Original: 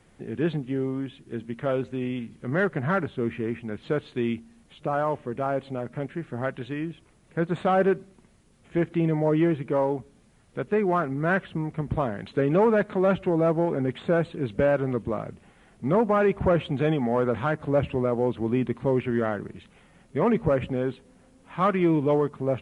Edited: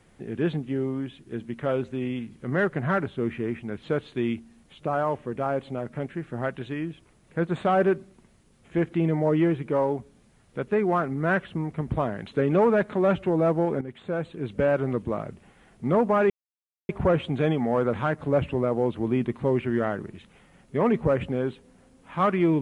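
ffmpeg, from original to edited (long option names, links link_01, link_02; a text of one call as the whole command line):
ffmpeg -i in.wav -filter_complex "[0:a]asplit=3[link_01][link_02][link_03];[link_01]atrim=end=13.81,asetpts=PTS-STARTPTS,afade=type=out:start_time=13.806:duration=0.004:curve=hsin:silence=0.237137[link_04];[link_02]atrim=start=13.81:end=16.3,asetpts=PTS-STARTPTS,afade=type=in:duration=0.98:silence=0.237137,afade=type=out:start_time=2.486:duration=0.004:curve=hsin,apad=pad_dur=0.59[link_05];[link_03]atrim=start=16.3,asetpts=PTS-STARTPTS,afade=type=in:duration=0.004:curve=hsin[link_06];[link_04][link_05][link_06]concat=n=3:v=0:a=1" out.wav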